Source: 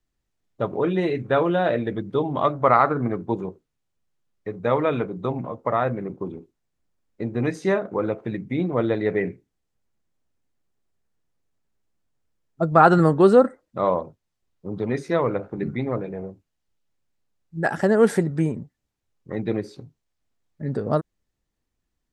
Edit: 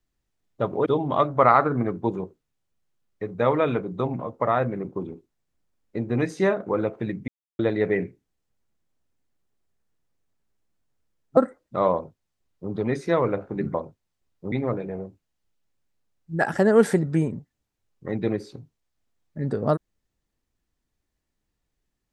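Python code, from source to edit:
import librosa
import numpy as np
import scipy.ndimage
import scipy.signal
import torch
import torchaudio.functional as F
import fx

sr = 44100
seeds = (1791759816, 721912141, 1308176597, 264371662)

y = fx.edit(x, sr, fx.cut(start_s=0.86, length_s=1.25),
    fx.silence(start_s=8.53, length_s=0.31),
    fx.cut(start_s=12.62, length_s=0.77),
    fx.duplicate(start_s=13.95, length_s=0.78, to_s=15.76), tone=tone)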